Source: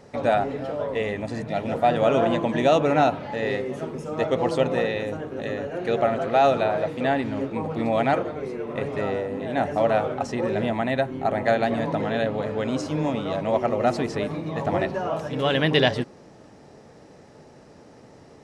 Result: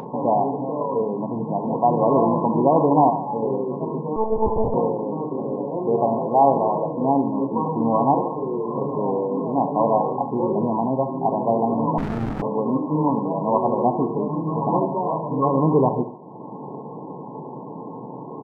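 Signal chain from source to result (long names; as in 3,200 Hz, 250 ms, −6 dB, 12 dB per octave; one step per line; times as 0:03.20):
spectral tilt +3.5 dB per octave
comb filter 0.8 ms, depth 63%
feedback echo with a high-pass in the loop 72 ms, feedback 62%, high-pass 440 Hz, level −9 dB
upward compression, threshold −28 dBFS
in parallel at −6.5 dB: bit reduction 6 bits
on the sum: brick-wall band-pass 110–1,100 Hz
on a send at −12.5 dB: convolution reverb RT60 0.35 s, pre-delay 4 ms
0:04.16–0:04.74: on the sum: one-pitch LPC vocoder at 8 kHz 220 Hz
0:11.98–0:12.42: windowed peak hold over 65 samples
level +5.5 dB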